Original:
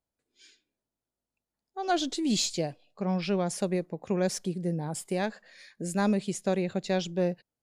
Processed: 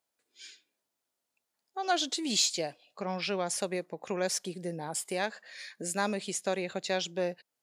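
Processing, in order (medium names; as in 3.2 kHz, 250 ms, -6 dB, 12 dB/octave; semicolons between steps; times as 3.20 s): high-pass 870 Hz 6 dB/octave; in parallel at +1 dB: compression, threshold -47 dBFS, peak gain reduction 20 dB; on the sum: trim +1.5 dB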